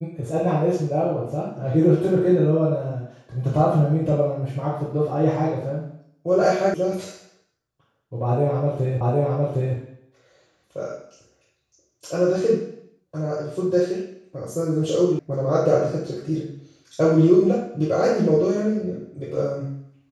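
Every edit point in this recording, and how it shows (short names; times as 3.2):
6.74 sound cut off
9.01 repeat of the last 0.76 s
15.19 sound cut off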